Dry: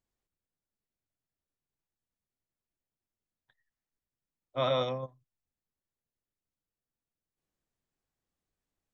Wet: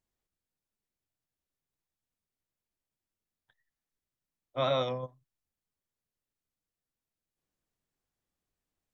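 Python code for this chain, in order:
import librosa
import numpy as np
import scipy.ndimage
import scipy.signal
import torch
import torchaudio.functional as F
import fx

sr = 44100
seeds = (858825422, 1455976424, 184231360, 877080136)

y = fx.wow_flutter(x, sr, seeds[0], rate_hz=2.1, depth_cents=49.0)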